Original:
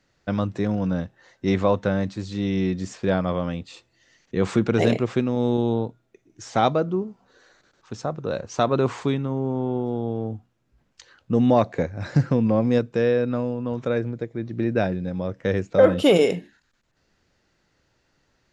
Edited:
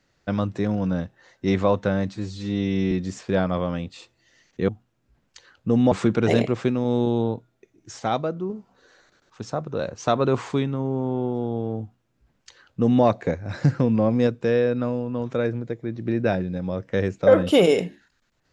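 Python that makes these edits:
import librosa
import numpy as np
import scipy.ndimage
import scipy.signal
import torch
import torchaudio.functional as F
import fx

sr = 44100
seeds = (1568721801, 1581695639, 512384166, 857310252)

y = fx.edit(x, sr, fx.stretch_span(start_s=2.15, length_s=0.51, factor=1.5),
    fx.clip_gain(start_s=6.51, length_s=0.5, db=-4.5),
    fx.duplicate(start_s=10.32, length_s=1.23, to_s=4.43), tone=tone)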